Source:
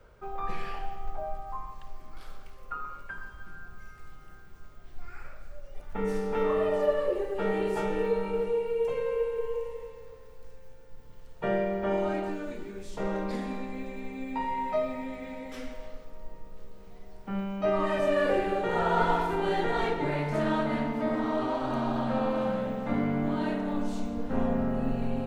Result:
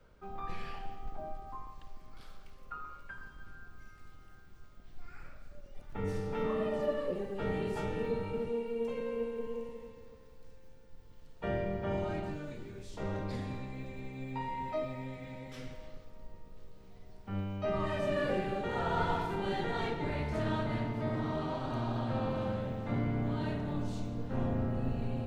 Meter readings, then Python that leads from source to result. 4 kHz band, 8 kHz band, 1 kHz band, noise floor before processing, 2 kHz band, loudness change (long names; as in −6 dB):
−3.5 dB, can't be measured, −7.0 dB, −47 dBFS, −6.0 dB, −6.0 dB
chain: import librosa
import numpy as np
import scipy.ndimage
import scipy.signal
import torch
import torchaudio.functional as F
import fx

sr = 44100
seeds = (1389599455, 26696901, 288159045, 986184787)

y = fx.octave_divider(x, sr, octaves=1, level_db=2.0)
y = fx.peak_eq(y, sr, hz=4100.0, db=4.5, octaves=1.5)
y = F.gain(torch.from_numpy(y), -7.5).numpy()